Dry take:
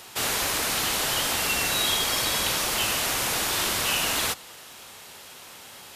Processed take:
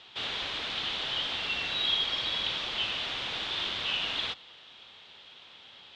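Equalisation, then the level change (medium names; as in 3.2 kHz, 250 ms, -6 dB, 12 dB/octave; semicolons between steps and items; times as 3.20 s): four-pole ladder low-pass 3.8 kHz, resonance 65%; 0.0 dB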